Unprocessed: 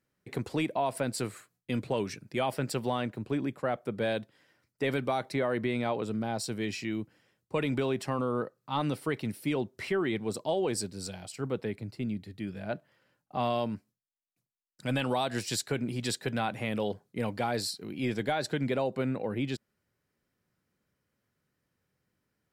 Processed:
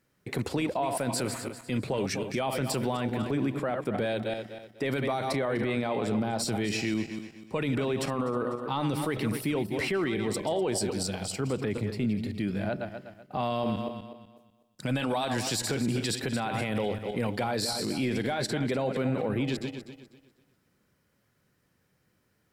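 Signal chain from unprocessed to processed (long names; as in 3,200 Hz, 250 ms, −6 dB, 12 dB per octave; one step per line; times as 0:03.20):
feedback delay that plays each chunk backwards 124 ms, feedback 53%, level −10 dB
brickwall limiter −28.5 dBFS, peak gain reduction 11 dB
level +8 dB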